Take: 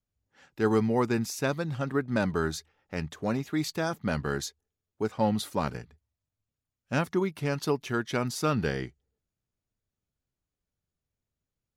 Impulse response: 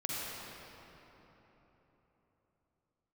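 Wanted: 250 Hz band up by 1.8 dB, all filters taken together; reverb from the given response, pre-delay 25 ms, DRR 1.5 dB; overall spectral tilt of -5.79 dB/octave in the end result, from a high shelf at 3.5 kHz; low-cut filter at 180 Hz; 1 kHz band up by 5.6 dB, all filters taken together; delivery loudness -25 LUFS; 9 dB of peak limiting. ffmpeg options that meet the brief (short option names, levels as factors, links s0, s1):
-filter_complex "[0:a]highpass=180,equalizer=f=250:t=o:g=3.5,equalizer=f=1000:t=o:g=8,highshelf=f=3500:g=-9,alimiter=limit=0.126:level=0:latency=1,asplit=2[s0][s1];[1:a]atrim=start_sample=2205,adelay=25[s2];[s1][s2]afir=irnorm=-1:irlink=0,volume=0.501[s3];[s0][s3]amix=inputs=2:normalize=0,volume=1.68"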